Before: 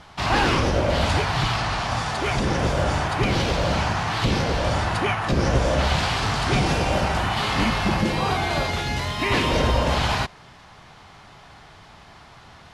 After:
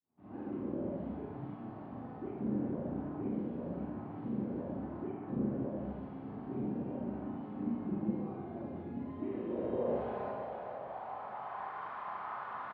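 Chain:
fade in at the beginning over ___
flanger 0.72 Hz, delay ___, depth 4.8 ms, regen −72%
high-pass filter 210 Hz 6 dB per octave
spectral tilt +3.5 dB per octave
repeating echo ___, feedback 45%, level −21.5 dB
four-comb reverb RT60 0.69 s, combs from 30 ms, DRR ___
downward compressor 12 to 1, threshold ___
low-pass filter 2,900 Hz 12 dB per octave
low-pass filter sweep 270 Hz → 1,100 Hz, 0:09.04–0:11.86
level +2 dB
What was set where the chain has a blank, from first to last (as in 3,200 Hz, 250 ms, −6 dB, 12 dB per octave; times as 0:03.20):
1.54 s, 7.5 ms, 462 ms, −4 dB, −27 dBFS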